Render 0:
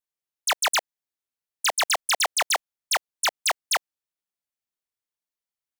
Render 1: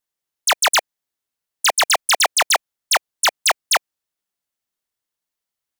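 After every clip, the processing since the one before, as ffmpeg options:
ffmpeg -i in.wav -af "bandreject=frequency=2400:width=23,volume=7dB" out.wav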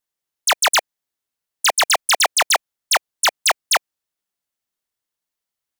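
ffmpeg -i in.wav -af anull out.wav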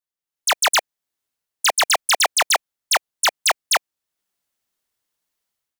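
ffmpeg -i in.wav -af "dynaudnorm=framelen=140:gausssize=5:maxgain=14.5dB,volume=-9dB" out.wav

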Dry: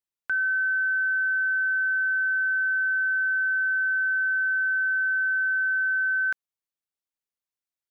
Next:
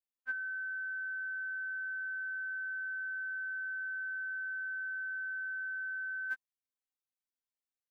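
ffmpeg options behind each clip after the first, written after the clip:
ffmpeg -i in.wav -af "afftfilt=real='re*3.46*eq(mod(b,12),0)':imag='im*3.46*eq(mod(b,12),0)':win_size=2048:overlap=0.75,volume=-6.5dB" out.wav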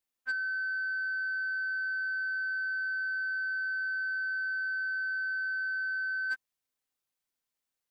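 ffmpeg -i in.wav -af "asoftclip=type=tanh:threshold=-34dB,volume=7dB" out.wav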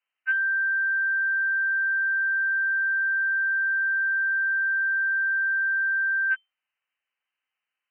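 ffmpeg -i in.wav -af "lowpass=frequency=2600:width_type=q:width=0.5098,lowpass=frequency=2600:width_type=q:width=0.6013,lowpass=frequency=2600:width_type=q:width=0.9,lowpass=frequency=2600:width_type=q:width=2.563,afreqshift=-3100,tiltshelf=frequency=920:gain=-9,volume=4.5dB" out.wav

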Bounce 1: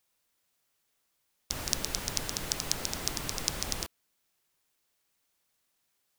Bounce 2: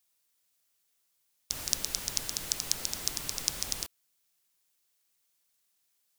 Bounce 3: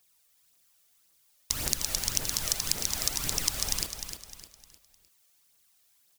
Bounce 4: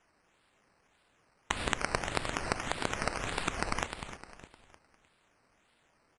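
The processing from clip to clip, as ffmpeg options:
ffmpeg -i in.wav -af "highshelf=frequency=2900:gain=10,volume=-7dB" out.wav
ffmpeg -i in.wav -filter_complex "[0:a]acompressor=threshold=-33dB:ratio=2.5,aphaser=in_gain=1:out_gain=1:delay=1.8:decay=0.51:speed=1.8:type=triangular,asplit=2[link_01][link_02];[link_02]aecho=0:1:305|610|915|1220:0.376|0.139|0.0515|0.019[link_03];[link_01][link_03]amix=inputs=2:normalize=0,volume=6.5dB" out.wav
ffmpeg -i in.wav -af "acrusher=samples=10:mix=1:aa=0.000001:lfo=1:lforange=6:lforate=1.7,aresample=22050,aresample=44100,volume=-3.5dB" out.wav

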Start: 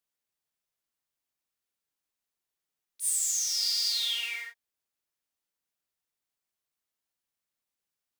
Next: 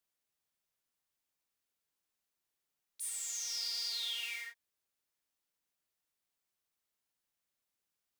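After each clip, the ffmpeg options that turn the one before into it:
ffmpeg -i in.wav -filter_complex "[0:a]acrossover=split=1500|3500[link_01][link_02][link_03];[link_01]acompressor=threshold=-56dB:ratio=4[link_04];[link_02]acompressor=threshold=-44dB:ratio=4[link_05];[link_03]acompressor=threshold=-41dB:ratio=4[link_06];[link_04][link_05][link_06]amix=inputs=3:normalize=0" out.wav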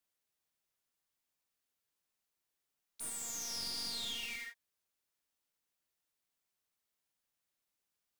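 ffmpeg -i in.wav -af "aeval=exprs='clip(val(0),-1,0.00708)':channel_layout=same" out.wav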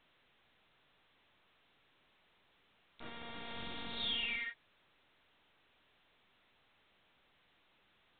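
ffmpeg -i in.wav -af "volume=5dB" -ar 8000 -c:a pcm_alaw out.wav

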